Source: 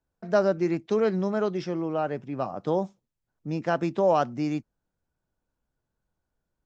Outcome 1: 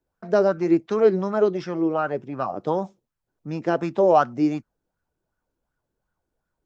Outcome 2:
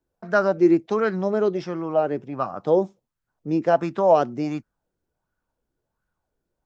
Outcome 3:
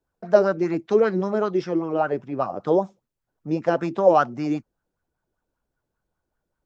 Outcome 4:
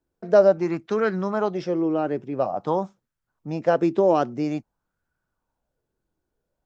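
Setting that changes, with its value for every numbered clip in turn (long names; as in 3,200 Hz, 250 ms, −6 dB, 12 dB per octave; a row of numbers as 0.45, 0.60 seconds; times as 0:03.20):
auto-filter bell, speed: 2.7, 1.4, 5.1, 0.49 Hertz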